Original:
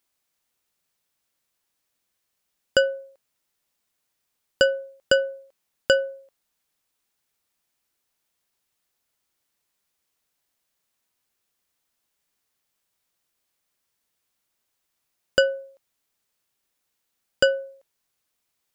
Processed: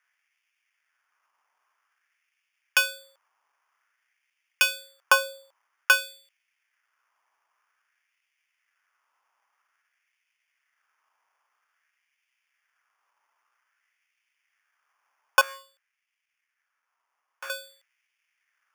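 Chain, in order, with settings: sample-and-hold 11×; 15.41–17.5 tube stage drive 35 dB, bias 0.8; LFO high-pass sine 0.51 Hz 950–2400 Hz

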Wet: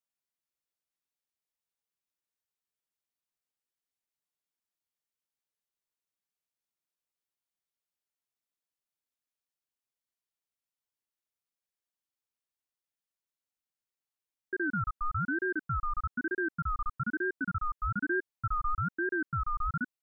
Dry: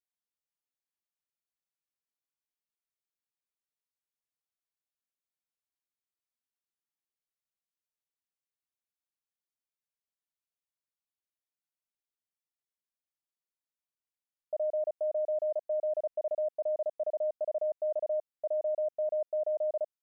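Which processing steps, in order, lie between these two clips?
18–18.75 comb 4.5 ms, depth 63%; ring modulator with a swept carrier 790 Hz, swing 25%, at 1.1 Hz; gain +2.5 dB

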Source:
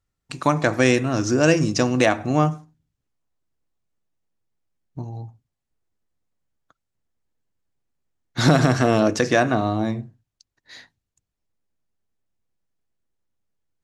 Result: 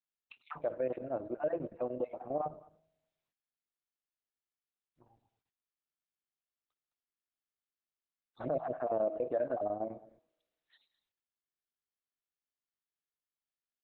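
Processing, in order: random spectral dropouts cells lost 31%; de-hum 317.9 Hz, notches 21; auto-wah 600–4300 Hz, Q 3.6, down, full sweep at -21.5 dBFS; low shelf 130 Hz +2.5 dB; notch 2000 Hz, Q 14; chopper 10 Hz, depth 65%, duty 80%; resonator 160 Hz, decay 1.1 s, mix 30%; limiter -23.5 dBFS, peak gain reduction 8 dB; bell 4100 Hz -13.5 dB 0.92 oct; downsampling 11025 Hz; echo 0.211 s -20 dB; Opus 8 kbps 48000 Hz

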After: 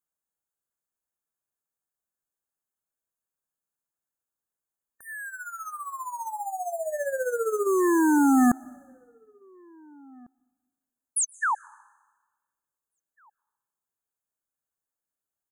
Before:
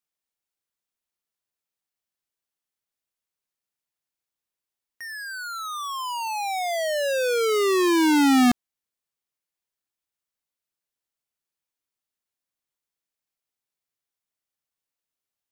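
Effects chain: 5.28–7.67 tremolo 15 Hz, depth 72%; 11.16–11.55 painted sound fall 790–11000 Hz -22 dBFS; brick-wall FIR band-stop 1800–6200 Hz; outdoor echo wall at 300 m, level -29 dB; reverb RT60 1.3 s, pre-delay 0.114 s, DRR 24 dB; gain -1.5 dB

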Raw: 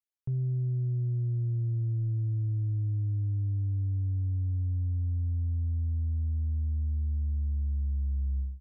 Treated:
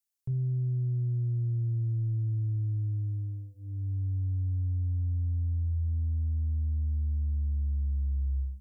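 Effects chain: tone controls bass +3 dB, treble +12 dB; notches 50/100/150/200/250/300 Hz; gain -2.5 dB

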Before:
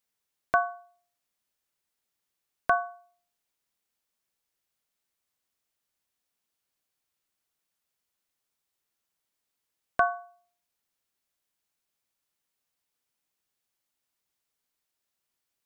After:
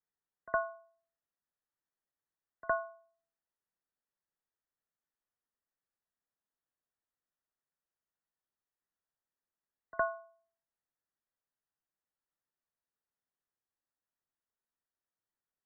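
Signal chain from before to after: frequency shift -35 Hz; brick-wall FIR low-pass 2000 Hz; pre-echo 63 ms -20 dB; gain -8 dB

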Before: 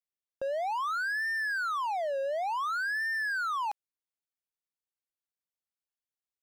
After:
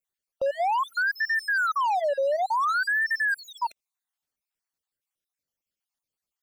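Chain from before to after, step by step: random spectral dropouts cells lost 47%; low shelf 180 Hz +3.5 dB; gain +7.5 dB

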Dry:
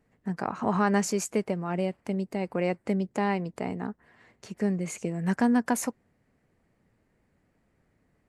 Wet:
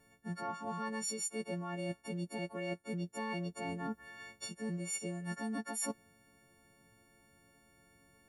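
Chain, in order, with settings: frequency quantiser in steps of 4 st; reverse; compressor 12:1, threshold -38 dBFS, peak gain reduction 21.5 dB; reverse; gain +2 dB

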